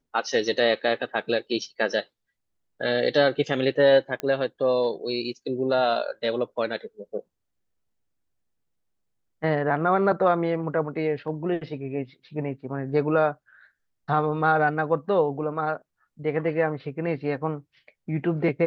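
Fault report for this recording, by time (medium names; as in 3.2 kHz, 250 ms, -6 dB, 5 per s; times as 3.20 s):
4.20 s: pop -16 dBFS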